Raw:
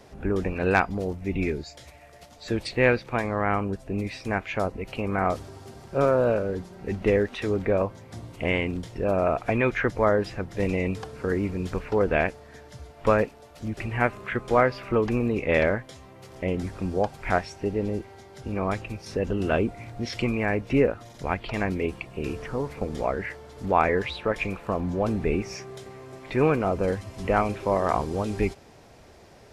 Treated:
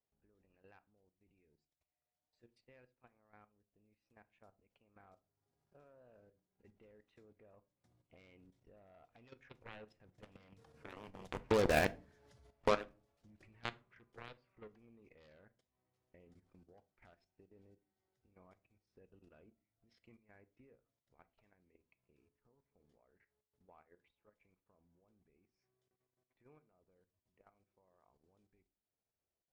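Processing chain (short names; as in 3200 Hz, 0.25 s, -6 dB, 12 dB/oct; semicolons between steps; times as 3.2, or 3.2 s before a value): Doppler pass-by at 11.84, 12 m/s, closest 2.7 m; added harmonics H 5 -27 dB, 7 -13 dB, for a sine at -19 dBFS; level quantiser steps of 11 dB; transient shaper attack +3 dB, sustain -6 dB; on a send: reverb RT60 0.35 s, pre-delay 4 ms, DRR 14 dB; on the sum: gain +2 dB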